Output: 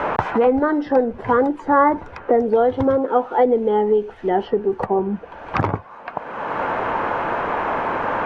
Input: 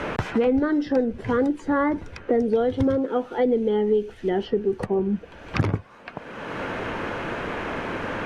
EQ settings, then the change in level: low-pass 3.9 kHz 6 dB/octave; peaking EQ 900 Hz +15 dB 1.6 oct; -1.5 dB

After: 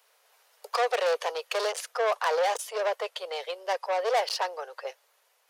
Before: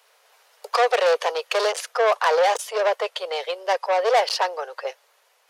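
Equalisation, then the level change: treble shelf 10 kHz +7.5 dB; -7.0 dB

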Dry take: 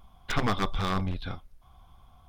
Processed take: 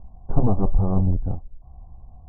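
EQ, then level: steep low-pass 840 Hz 36 dB/octave; bass shelf 150 Hz +9 dB; +5.0 dB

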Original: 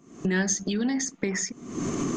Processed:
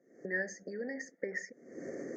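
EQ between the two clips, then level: vowel filter e; Chebyshev band-stop 2.2–4.6 kHz, order 5; +3.5 dB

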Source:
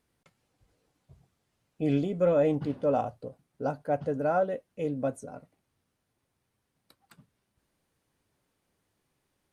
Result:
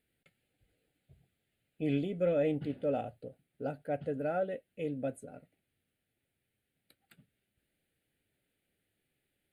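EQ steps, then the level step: bass shelf 400 Hz -6 dB; static phaser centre 2.5 kHz, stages 4; 0.0 dB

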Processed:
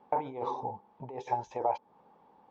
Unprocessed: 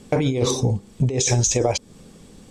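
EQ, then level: band-pass filter 880 Hz, Q 9.2; distance through air 200 m; +8.0 dB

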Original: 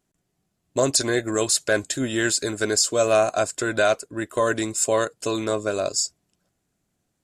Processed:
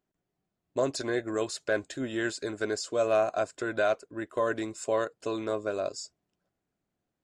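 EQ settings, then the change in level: tone controls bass -6 dB, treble -1 dB; tape spacing loss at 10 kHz 24 dB; treble shelf 7.3 kHz +9 dB; -4.5 dB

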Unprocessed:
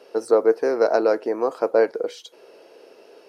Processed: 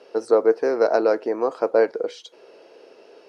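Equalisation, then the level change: low-pass 6.9 kHz 12 dB/octave; 0.0 dB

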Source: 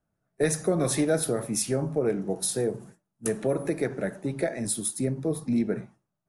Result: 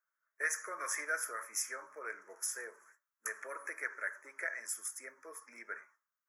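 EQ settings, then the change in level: high-pass 850 Hz 24 dB/octave; Butterworth band-stop 4 kHz, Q 0.94; static phaser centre 2.8 kHz, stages 6; +3.5 dB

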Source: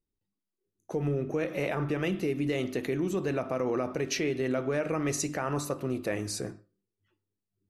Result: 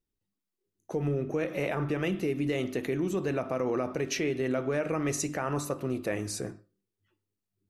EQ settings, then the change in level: dynamic bell 4.5 kHz, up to -4 dB, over -55 dBFS, Q 3.6; 0.0 dB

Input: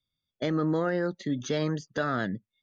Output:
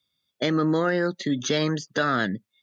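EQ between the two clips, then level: high-pass 260 Hz 6 dB/octave; dynamic bell 660 Hz, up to -5 dB, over -40 dBFS, Q 0.72; peaking EQ 3.9 kHz +2 dB; +9.0 dB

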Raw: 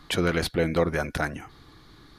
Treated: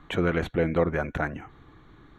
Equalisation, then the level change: boxcar filter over 9 samples; 0.0 dB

